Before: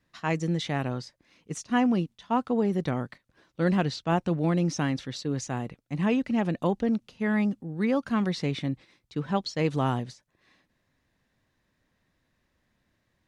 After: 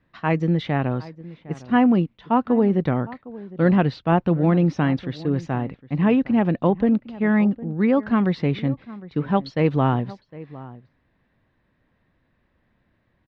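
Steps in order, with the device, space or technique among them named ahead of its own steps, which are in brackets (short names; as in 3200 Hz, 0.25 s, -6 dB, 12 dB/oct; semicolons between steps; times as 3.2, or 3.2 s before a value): shout across a valley (air absorption 350 m; outdoor echo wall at 130 m, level -18 dB); gain +7.5 dB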